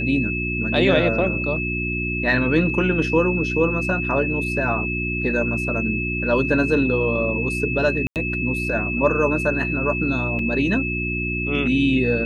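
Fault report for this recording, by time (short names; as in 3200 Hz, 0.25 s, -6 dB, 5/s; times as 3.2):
hum 60 Hz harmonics 6 -27 dBFS
tone 2600 Hz -25 dBFS
8.07–8.16 gap 88 ms
10.39 gap 2.7 ms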